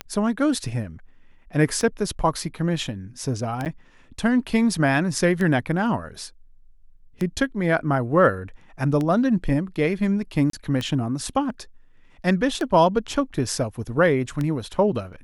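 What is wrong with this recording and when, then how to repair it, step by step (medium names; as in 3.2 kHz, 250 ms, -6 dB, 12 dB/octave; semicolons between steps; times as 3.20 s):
tick 33 1/3 rpm -14 dBFS
3.65–3.66 s: dropout 8.5 ms
10.50–10.53 s: dropout 33 ms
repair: de-click; interpolate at 3.65 s, 8.5 ms; interpolate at 10.50 s, 33 ms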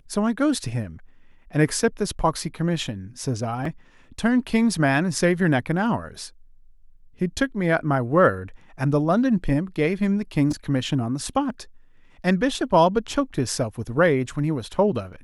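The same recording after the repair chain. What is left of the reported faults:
nothing left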